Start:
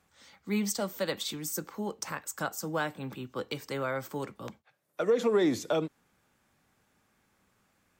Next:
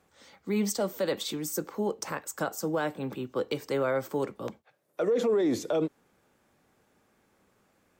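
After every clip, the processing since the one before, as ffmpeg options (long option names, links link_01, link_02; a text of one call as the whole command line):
ffmpeg -i in.wav -af "equalizer=frequency=440:width=0.8:gain=8,alimiter=limit=-19.5dB:level=0:latency=1:release=18" out.wav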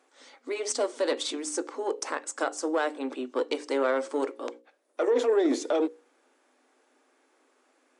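ffmpeg -i in.wav -af "bandreject=frequency=60:width_type=h:width=6,bandreject=frequency=120:width_type=h:width=6,bandreject=frequency=180:width_type=h:width=6,bandreject=frequency=240:width_type=h:width=6,bandreject=frequency=300:width_type=h:width=6,bandreject=frequency=360:width_type=h:width=6,bandreject=frequency=420:width_type=h:width=6,bandreject=frequency=480:width_type=h:width=6,bandreject=frequency=540:width_type=h:width=6,aeval=exprs='0.133*(cos(1*acos(clip(val(0)/0.133,-1,1)))-cos(1*PI/2))+0.0119*(cos(4*acos(clip(val(0)/0.133,-1,1)))-cos(4*PI/2))':channel_layout=same,afftfilt=real='re*between(b*sr/4096,240,11000)':imag='im*between(b*sr/4096,240,11000)':win_size=4096:overlap=0.75,volume=2.5dB" out.wav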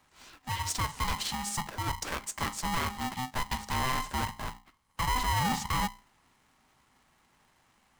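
ffmpeg -i in.wav -af "asoftclip=type=tanh:threshold=-25dB,aeval=exprs='val(0)*sgn(sin(2*PI*510*n/s))':channel_layout=same" out.wav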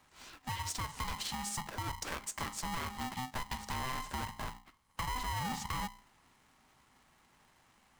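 ffmpeg -i in.wav -af "acompressor=threshold=-36dB:ratio=6" out.wav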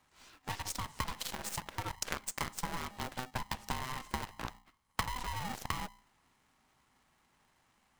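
ffmpeg -i in.wav -af "aeval=exprs='0.0447*(cos(1*acos(clip(val(0)/0.0447,-1,1)))-cos(1*PI/2))+0.0158*(cos(3*acos(clip(val(0)/0.0447,-1,1)))-cos(3*PI/2))+0.000316*(cos(5*acos(clip(val(0)/0.0447,-1,1)))-cos(5*PI/2))+0.000891*(cos(6*acos(clip(val(0)/0.0447,-1,1)))-cos(6*PI/2))+0.000891*(cos(7*acos(clip(val(0)/0.0447,-1,1)))-cos(7*PI/2))':channel_layout=same,volume=11dB" out.wav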